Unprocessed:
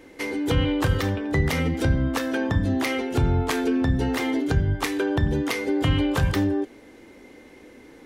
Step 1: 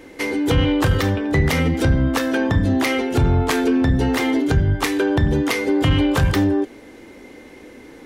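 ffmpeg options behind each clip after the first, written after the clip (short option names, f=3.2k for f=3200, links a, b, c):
-af "asoftclip=type=tanh:threshold=-13.5dB,volume=6dB"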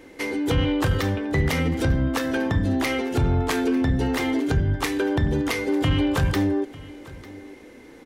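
-af "aecho=1:1:898:0.1,volume=-4.5dB"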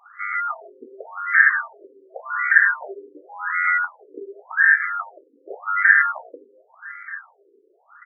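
-af "equalizer=f=69:w=0.56:g=8.5,aeval=exprs='val(0)*sin(2*PI*1700*n/s)':c=same,afftfilt=real='re*between(b*sr/1024,360*pow(1700/360,0.5+0.5*sin(2*PI*0.89*pts/sr))/1.41,360*pow(1700/360,0.5+0.5*sin(2*PI*0.89*pts/sr))*1.41)':imag='im*between(b*sr/1024,360*pow(1700/360,0.5+0.5*sin(2*PI*0.89*pts/sr))/1.41,360*pow(1700/360,0.5+0.5*sin(2*PI*0.89*pts/sr))*1.41)':win_size=1024:overlap=0.75,volume=4dB"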